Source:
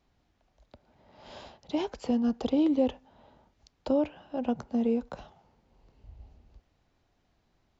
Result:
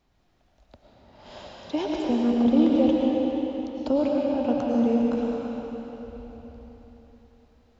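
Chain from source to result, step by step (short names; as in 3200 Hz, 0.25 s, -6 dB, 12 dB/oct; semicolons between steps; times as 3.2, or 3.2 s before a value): 2.02–2.52 LPF 2800 Hz 12 dB/oct; digital reverb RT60 4 s, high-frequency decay 0.9×, pre-delay 70 ms, DRR -3 dB; gain +2 dB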